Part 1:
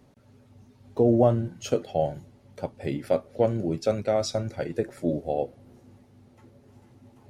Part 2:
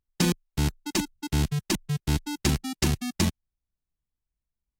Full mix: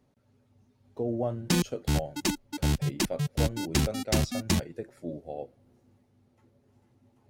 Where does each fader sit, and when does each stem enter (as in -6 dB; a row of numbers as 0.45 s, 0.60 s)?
-10.5 dB, -1.5 dB; 0.00 s, 1.30 s